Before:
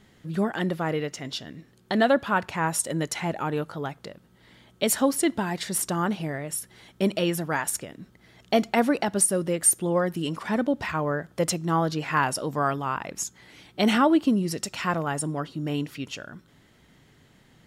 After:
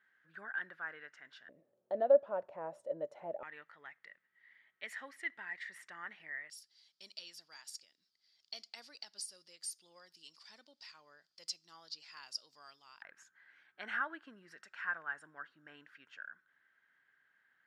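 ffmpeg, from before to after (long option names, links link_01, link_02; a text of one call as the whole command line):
ffmpeg -i in.wav -af "asetnsamples=nb_out_samples=441:pad=0,asendcmd='1.49 bandpass f 580;3.43 bandpass f 1900;6.5 bandpass f 4800;13.02 bandpass f 1600',bandpass=frequency=1600:width_type=q:width=9.6:csg=0" out.wav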